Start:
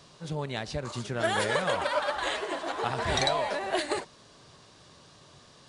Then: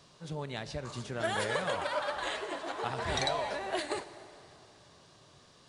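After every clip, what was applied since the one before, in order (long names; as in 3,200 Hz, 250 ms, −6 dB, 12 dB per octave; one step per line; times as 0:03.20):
dense smooth reverb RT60 3.2 s, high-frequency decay 0.75×, DRR 13 dB
level −5 dB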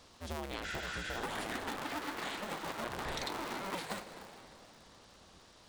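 sub-harmonics by changed cycles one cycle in 2, inverted
healed spectral selection 0:00.67–0:01.18, 1,300–7,900 Hz after
downward compressor, threshold −36 dBFS, peak gain reduction 9.5 dB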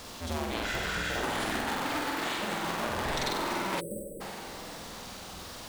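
converter with a step at zero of −46.5 dBFS
flutter between parallel walls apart 8.1 metres, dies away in 0.74 s
time-frequency box erased 0:03.80–0:04.21, 610–7,800 Hz
level +4 dB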